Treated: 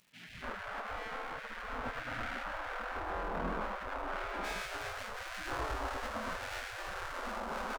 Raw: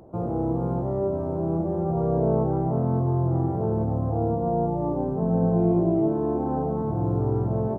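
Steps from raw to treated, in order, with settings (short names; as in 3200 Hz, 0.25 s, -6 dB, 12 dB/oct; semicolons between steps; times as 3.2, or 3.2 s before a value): minimum comb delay 0.65 ms; bands offset in time highs, lows 0.29 s, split 430 Hz; compressor, threshold -23 dBFS, peak gain reduction 5 dB; spectral gate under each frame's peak -20 dB weak; tone controls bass +9 dB, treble -5 dB, from 4.43 s treble +7 dB; crackle 340/s -58 dBFS; bell 1500 Hz +2 dB 0.37 oct; gain +2 dB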